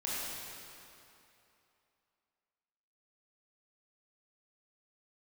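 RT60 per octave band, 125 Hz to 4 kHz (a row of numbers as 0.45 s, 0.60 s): 2.6 s, 2.7 s, 2.8 s, 2.9 s, 2.6 s, 2.3 s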